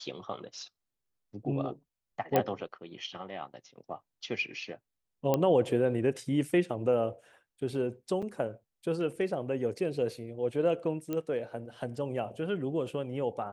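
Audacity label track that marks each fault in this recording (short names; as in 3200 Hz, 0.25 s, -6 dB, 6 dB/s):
2.360000	2.360000	pop -12 dBFS
5.340000	5.340000	pop -13 dBFS
8.220000	8.230000	gap 5.5 ms
11.130000	11.130000	pop -21 dBFS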